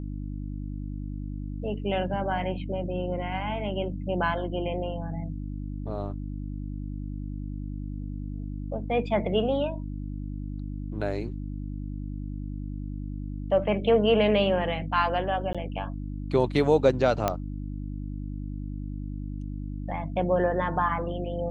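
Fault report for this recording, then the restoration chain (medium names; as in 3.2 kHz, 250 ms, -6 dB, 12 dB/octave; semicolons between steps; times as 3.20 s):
hum 50 Hz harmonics 6 -34 dBFS
15.53–15.55 s: dropout 16 ms
17.28 s: pop -10 dBFS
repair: de-click; de-hum 50 Hz, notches 6; interpolate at 15.53 s, 16 ms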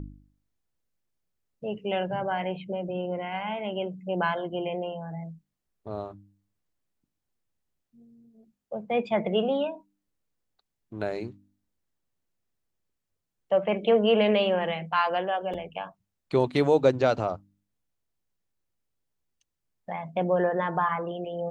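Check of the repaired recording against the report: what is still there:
17.28 s: pop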